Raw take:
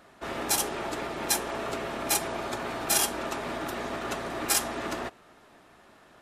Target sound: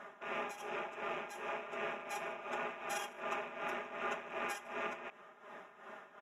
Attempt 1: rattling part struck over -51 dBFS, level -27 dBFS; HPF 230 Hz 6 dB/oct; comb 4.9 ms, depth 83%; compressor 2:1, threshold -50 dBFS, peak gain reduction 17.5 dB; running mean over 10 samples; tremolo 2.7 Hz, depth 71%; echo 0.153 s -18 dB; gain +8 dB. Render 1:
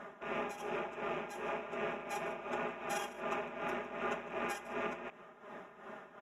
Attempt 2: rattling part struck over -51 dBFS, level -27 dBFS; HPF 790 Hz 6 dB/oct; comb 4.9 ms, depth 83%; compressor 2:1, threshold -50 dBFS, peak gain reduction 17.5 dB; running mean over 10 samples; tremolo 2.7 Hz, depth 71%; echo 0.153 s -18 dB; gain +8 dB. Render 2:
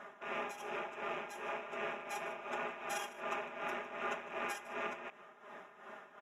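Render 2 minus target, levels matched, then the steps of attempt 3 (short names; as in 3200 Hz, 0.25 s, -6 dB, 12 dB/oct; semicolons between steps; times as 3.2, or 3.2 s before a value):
echo-to-direct +7 dB
rattling part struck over -51 dBFS, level -27 dBFS; HPF 790 Hz 6 dB/oct; comb 4.9 ms, depth 83%; compressor 2:1, threshold -50 dBFS, peak gain reduction 17.5 dB; running mean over 10 samples; tremolo 2.7 Hz, depth 71%; echo 0.153 s -25 dB; gain +8 dB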